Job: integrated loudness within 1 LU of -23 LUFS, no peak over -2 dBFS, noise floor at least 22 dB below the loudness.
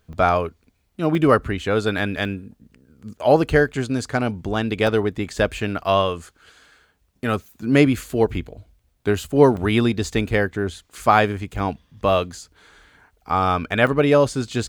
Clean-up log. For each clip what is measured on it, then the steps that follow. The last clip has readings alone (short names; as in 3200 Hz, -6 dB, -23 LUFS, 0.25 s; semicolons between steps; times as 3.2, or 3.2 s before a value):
dropouts 7; longest dropout 2.0 ms; loudness -20.5 LUFS; peak -1.0 dBFS; loudness target -23.0 LUFS
-> interpolate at 0.13/1.15/2.25/4.87/9.57/11.56/13.87, 2 ms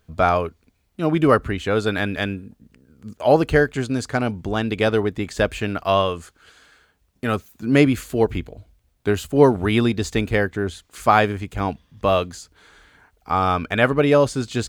dropouts 0; loudness -20.5 LUFS; peak -1.0 dBFS; loudness target -23.0 LUFS
-> gain -2.5 dB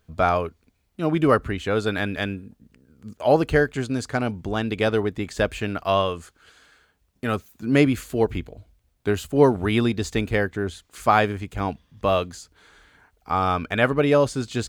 loudness -23.0 LUFS; peak -3.5 dBFS; noise floor -67 dBFS